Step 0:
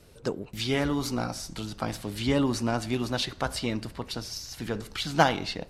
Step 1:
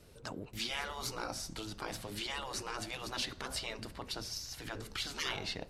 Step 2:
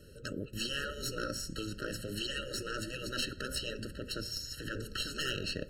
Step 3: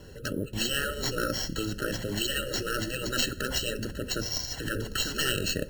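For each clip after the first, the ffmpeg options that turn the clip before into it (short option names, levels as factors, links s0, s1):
-af "afftfilt=real='re*lt(hypot(re,im),0.112)':imag='im*lt(hypot(re,im),0.112)':win_size=1024:overlap=0.75,volume=0.631"
-af "aeval=exprs='0.119*(cos(1*acos(clip(val(0)/0.119,-1,1)))-cos(1*PI/2))+0.0168*(cos(5*acos(clip(val(0)/0.119,-1,1)))-cos(5*PI/2))+0.0531*(cos(6*acos(clip(val(0)/0.119,-1,1)))-cos(6*PI/2))+0.0237*(cos(8*acos(clip(val(0)/0.119,-1,1)))-cos(8*PI/2))':c=same,afftfilt=real='re*eq(mod(floor(b*sr/1024/640),2),0)':imag='im*eq(mod(floor(b*sr/1024/640),2),0)':win_size=1024:overlap=0.75"
-af "acrusher=samples=4:mix=1:aa=0.000001,volume=2.37"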